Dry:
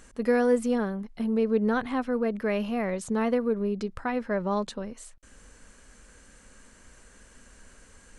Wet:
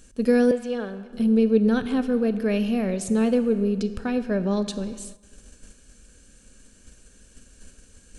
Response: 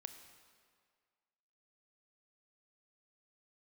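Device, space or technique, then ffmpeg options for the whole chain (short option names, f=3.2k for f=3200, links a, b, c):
keyed gated reverb: -filter_complex "[0:a]equalizer=f=1k:w=1:g=-14,bandreject=f=2k:w=5.1,asplit=3[a][b][c];[1:a]atrim=start_sample=2205[d];[b][d]afir=irnorm=-1:irlink=0[e];[c]apad=whole_len=360747[f];[e][f]sidechaingate=range=-10dB:threshold=-50dB:ratio=16:detection=peak,volume=11dB[g];[a][g]amix=inputs=2:normalize=0,asettb=1/sr,asplit=3[h][i][j];[h]atrim=end=0.514[k];[i]atrim=start=0.51:end=1.13,asetpts=PTS-STARTPTS,afade=t=in:d=0.004:c=qsin,afade=t=out:st=0.616:d=0.004:c=qsin,acrossover=split=470 4300:gain=0.224 1 0.141[l][m][n];[l][m][n]amix=inputs=3:normalize=0[o];[j]atrim=start=1.126[p];[k][o]acrossfade=d=0.004:c1=hsin:c2=qsin[q];[q][p]acrossfade=d=0.004:c1=qsin:c2=hsin,volume=-2dB"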